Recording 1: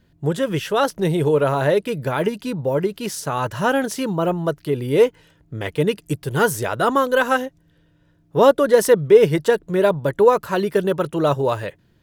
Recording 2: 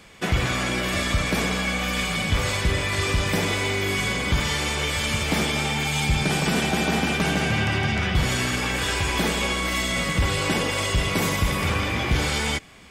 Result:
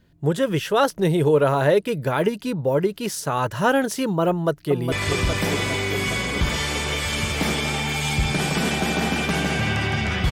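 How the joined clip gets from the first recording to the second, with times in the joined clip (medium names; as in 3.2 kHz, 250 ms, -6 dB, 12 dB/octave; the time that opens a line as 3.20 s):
recording 1
4.29–4.92 s: echo throw 410 ms, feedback 75%, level -7 dB
4.92 s: go over to recording 2 from 2.83 s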